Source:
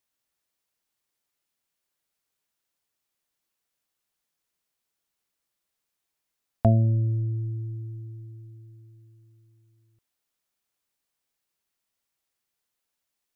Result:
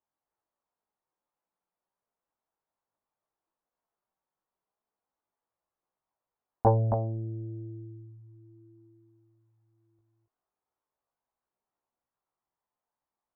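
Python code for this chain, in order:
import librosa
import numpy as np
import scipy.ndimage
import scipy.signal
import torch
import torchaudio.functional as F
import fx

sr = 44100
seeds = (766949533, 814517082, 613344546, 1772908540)

p1 = fx.lowpass_res(x, sr, hz=930.0, q=1.7)
p2 = fx.low_shelf(p1, sr, hz=340.0, db=-5.0)
p3 = p2 + fx.echo_single(p2, sr, ms=271, db=-5.5, dry=0)
p4 = fx.chorus_voices(p3, sr, voices=2, hz=0.17, base_ms=19, depth_ms=3.0, mix_pct=45)
p5 = fx.doppler_dist(p4, sr, depth_ms=0.55)
y = F.gain(torch.from_numpy(p5), 2.0).numpy()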